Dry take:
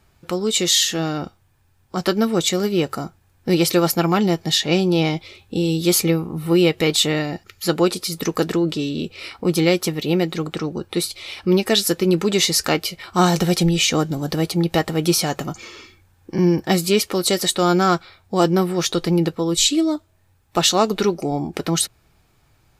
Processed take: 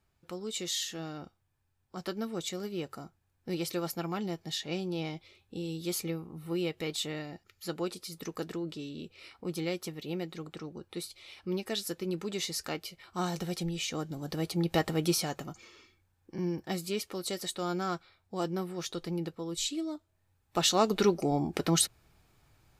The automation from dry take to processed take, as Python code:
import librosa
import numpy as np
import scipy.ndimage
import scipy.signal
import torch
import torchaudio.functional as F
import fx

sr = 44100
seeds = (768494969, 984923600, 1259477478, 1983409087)

y = fx.gain(x, sr, db=fx.line((13.91, -17.0), (14.88, -8.0), (15.67, -16.5), (19.92, -16.5), (21.08, -6.0)))